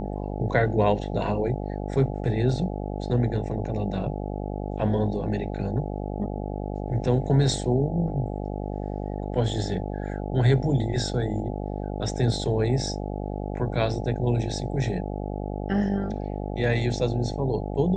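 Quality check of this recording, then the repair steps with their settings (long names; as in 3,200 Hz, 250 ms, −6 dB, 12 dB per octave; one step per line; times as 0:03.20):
mains buzz 50 Hz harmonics 17 −31 dBFS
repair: hum removal 50 Hz, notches 17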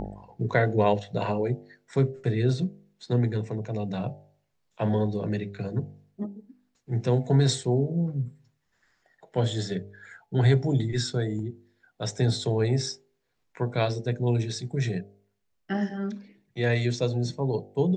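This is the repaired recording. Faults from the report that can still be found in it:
none of them is left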